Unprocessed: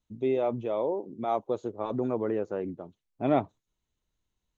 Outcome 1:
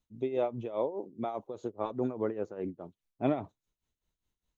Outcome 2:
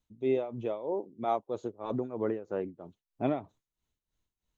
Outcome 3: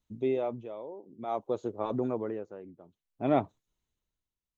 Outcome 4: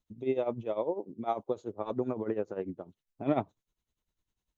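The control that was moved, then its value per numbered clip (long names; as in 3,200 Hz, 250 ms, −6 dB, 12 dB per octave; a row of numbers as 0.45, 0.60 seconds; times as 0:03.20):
amplitude tremolo, speed: 4.9, 3.1, 0.56, 10 Hertz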